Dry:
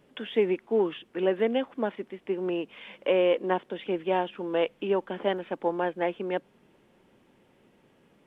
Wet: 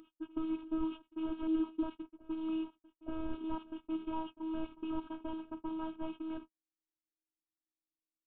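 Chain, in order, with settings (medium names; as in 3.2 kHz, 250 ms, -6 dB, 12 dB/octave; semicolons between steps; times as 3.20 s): one-bit delta coder 16 kbps, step -39 dBFS; gate -35 dBFS, range -55 dB; ten-band graphic EQ 125 Hz -9 dB, 250 Hz +10 dB, 500 Hz -8 dB, 2 kHz -12 dB; level-controlled noise filter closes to 550 Hz, open at -25 dBFS; static phaser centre 1.9 kHz, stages 6; reverse echo 877 ms -19 dB; robot voice 319 Hz; trim +1 dB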